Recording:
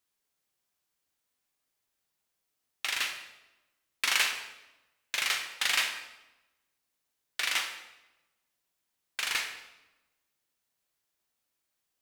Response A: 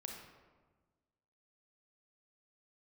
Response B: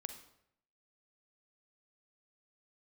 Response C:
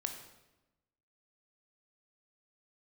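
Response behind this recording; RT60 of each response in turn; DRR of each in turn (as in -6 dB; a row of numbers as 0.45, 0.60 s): C; 1.4, 0.75, 1.0 s; 1.0, 8.0, 4.5 dB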